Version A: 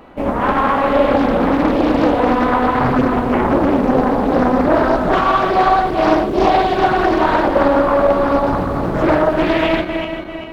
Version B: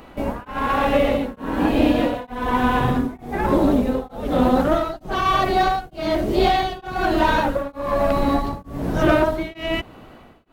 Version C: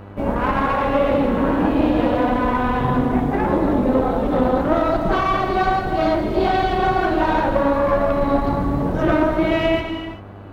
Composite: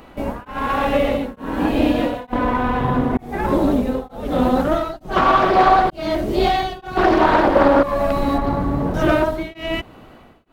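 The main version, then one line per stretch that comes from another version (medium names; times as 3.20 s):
B
2.33–3.17 s: from C
5.16–5.90 s: from A
6.97–7.83 s: from A
8.38–8.94 s: from C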